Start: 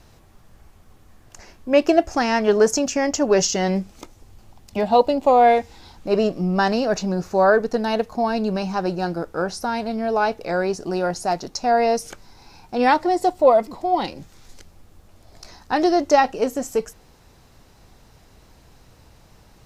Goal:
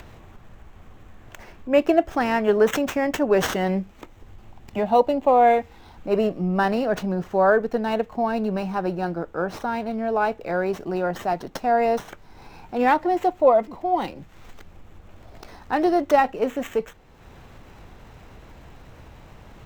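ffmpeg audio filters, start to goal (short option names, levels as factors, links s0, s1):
-filter_complex "[0:a]acrossover=split=110|760|3900[s0][s1][s2][s3];[s3]acrusher=samples=9:mix=1:aa=0.000001[s4];[s0][s1][s2][s4]amix=inputs=4:normalize=0,acompressor=mode=upward:threshold=0.0224:ratio=2.5,volume=0.794"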